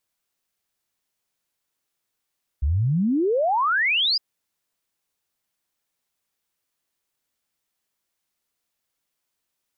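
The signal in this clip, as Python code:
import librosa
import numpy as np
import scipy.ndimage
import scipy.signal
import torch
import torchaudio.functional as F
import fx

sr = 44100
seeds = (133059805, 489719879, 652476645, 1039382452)

y = fx.ess(sr, length_s=1.56, from_hz=64.0, to_hz=5100.0, level_db=-18.0)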